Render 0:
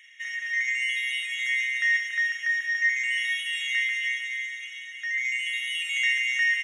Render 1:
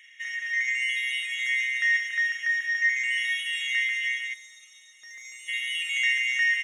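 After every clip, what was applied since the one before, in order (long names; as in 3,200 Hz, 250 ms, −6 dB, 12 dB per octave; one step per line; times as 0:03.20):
gain on a spectral selection 0:04.34–0:05.48, 1,300–3,400 Hz −17 dB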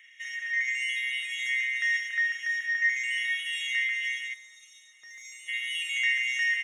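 two-band tremolo in antiphase 1.8 Hz, depth 50%, crossover 2,500 Hz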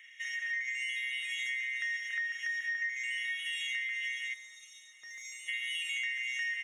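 downward compressor, threshold −33 dBFS, peak gain reduction 11.5 dB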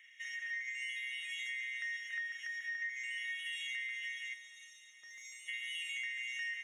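feedback echo with a high-pass in the loop 289 ms, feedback 66%, high-pass 1,100 Hz, level −14.5 dB
level −5.5 dB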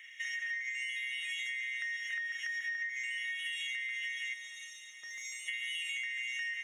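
downward compressor, threshold −43 dBFS, peak gain reduction 7 dB
level +8 dB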